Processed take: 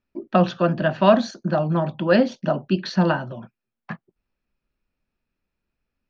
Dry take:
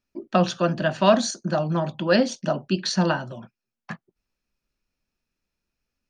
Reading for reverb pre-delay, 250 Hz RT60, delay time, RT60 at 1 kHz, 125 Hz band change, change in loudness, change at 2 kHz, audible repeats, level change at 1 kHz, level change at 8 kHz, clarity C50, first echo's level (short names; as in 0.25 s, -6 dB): none, none, none, none, +3.0 dB, +2.0 dB, +1.0 dB, none, +2.0 dB, under -10 dB, none, none